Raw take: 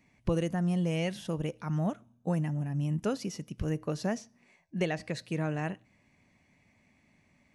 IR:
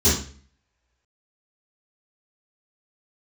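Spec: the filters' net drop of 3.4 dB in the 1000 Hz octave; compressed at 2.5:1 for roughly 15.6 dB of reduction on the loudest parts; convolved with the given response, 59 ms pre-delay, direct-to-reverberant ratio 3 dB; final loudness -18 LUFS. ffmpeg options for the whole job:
-filter_complex "[0:a]equalizer=f=1k:t=o:g=-5,acompressor=threshold=-49dB:ratio=2.5,asplit=2[a][b];[1:a]atrim=start_sample=2205,adelay=59[c];[b][c]afir=irnorm=-1:irlink=0,volume=-20.5dB[d];[a][d]amix=inputs=2:normalize=0,volume=24.5dB"

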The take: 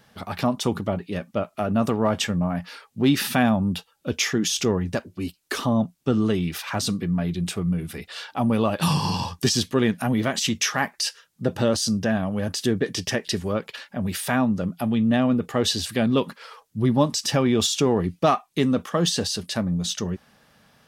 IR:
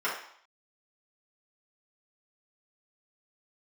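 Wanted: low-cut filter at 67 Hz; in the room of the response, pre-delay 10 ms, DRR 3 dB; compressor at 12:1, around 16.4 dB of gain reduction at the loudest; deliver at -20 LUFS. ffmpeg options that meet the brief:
-filter_complex "[0:a]highpass=67,acompressor=threshold=-32dB:ratio=12,asplit=2[a][b];[1:a]atrim=start_sample=2205,adelay=10[c];[b][c]afir=irnorm=-1:irlink=0,volume=-13.5dB[d];[a][d]amix=inputs=2:normalize=0,volume=16dB"

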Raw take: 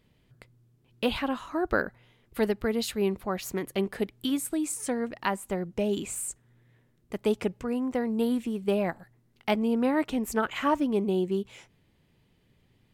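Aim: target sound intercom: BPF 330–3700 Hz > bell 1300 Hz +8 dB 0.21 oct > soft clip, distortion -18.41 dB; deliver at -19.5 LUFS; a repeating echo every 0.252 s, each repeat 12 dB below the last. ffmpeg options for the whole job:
-af "highpass=330,lowpass=3.7k,equalizer=f=1.3k:t=o:w=0.21:g=8,aecho=1:1:252|504|756:0.251|0.0628|0.0157,asoftclip=threshold=-16.5dB,volume=13dB"

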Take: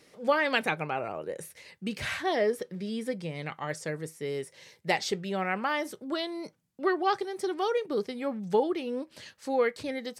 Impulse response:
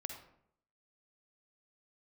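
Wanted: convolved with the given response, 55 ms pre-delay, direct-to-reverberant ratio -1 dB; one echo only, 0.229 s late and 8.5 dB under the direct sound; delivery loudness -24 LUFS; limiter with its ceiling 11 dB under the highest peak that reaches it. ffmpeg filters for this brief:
-filter_complex "[0:a]alimiter=limit=-22.5dB:level=0:latency=1,aecho=1:1:229:0.376,asplit=2[a][b];[1:a]atrim=start_sample=2205,adelay=55[c];[b][c]afir=irnorm=-1:irlink=0,volume=3dB[d];[a][d]amix=inputs=2:normalize=0,volume=6dB"

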